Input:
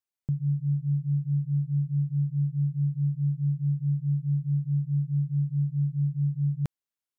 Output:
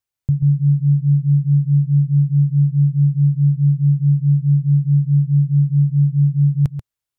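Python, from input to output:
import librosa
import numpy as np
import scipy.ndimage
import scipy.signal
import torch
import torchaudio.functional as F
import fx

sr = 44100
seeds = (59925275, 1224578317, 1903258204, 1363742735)

y = fx.low_shelf_res(x, sr, hz=150.0, db=7.5, q=1.5)
y = y + 10.0 ** (-9.5 / 20.0) * np.pad(y, (int(136 * sr / 1000.0), 0))[:len(y)]
y = F.gain(torch.from_numpy(y), 5.5).numpy()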